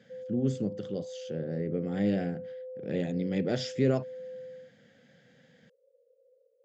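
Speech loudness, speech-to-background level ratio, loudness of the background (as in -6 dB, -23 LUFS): -32.0 LUFS, 10.5 dB, -42.5 LUFS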